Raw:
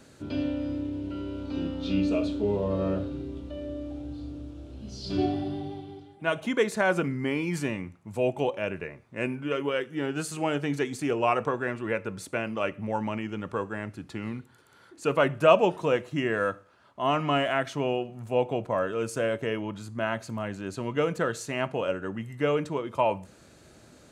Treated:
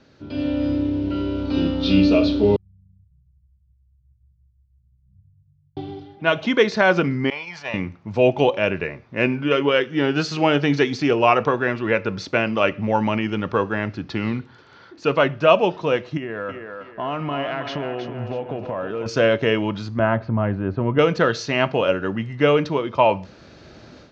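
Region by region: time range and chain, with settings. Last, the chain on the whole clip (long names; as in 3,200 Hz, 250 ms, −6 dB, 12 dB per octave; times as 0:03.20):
0:02.56–0:05.77: linear-phase brick-wall band-stop 180–9,900 Hz + stiff-string resonator 360 Hz, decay 0.33 s, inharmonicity 0.03
0:07.30–0:07.74: low shelf with overshoot 470 Hz −13.5 dB, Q 3 + downward expander −29 dBFS + envelope flattener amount 50%
0:16.17–0:19.06: low-pass filter 2,100 Hz 6 dB per octave + downward compressor, threshold −34 dBFS + feedback echo with a high-pass in the loop 319 ms, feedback 40%, high-pass 250 Hz, level −6.5 dB
0:19.99–0:20.99: low-pass filter 1,400 Hz + parametric band 65 Hz +11.5 dB 1.4 octaves
whole clip: automatic gain control gain up to 11.5 dB; Butterworth low-pass 5,700 Hz 48 dB per octave; dynamic equaliser 4,400 Hz, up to +5 dB, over −41 dBFS, Q 1; level −1 dB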